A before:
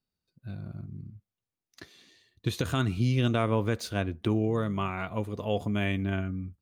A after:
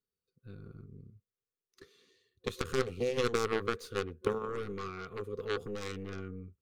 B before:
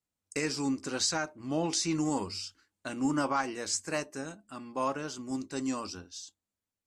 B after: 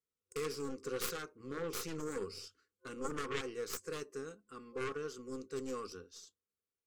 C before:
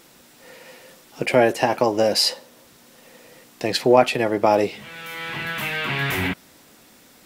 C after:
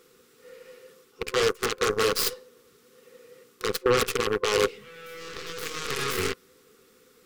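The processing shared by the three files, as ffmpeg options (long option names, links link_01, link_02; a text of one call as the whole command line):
ffmpeg -i in.wav -af "aeval=exprs='0.891*(cos(1*acos(clip(val(0)/0.891,-1,1)))-cos(1*PI/2))+0.112*(cos(2*acos(clip(val(0)/0.891,-1,1)))-cos(2*PI/2))+0.1*(cos(3*acos(clip(val(0)/0.891,-1,1)))-cos(3*PI/2))+0.0708*(cos(4*acos(clip(val(0)/0.891,-1,1)))-cos(4*PI/2))+0.0891*(cos(7*acos(clip(val(0)/0.891,-1,1)))-cos(7*PI/2))':channel_layout=same,areverse,acompressor=threshold=-27dB:ratio=16,areverse,aeval=exprs='0.126*sin(PI/2*5.62*val(0)/0.126)':channel_layout=same,superequalizer=7b=3.98:8b=0.316:9b=0.447:10b=1.78" out.wav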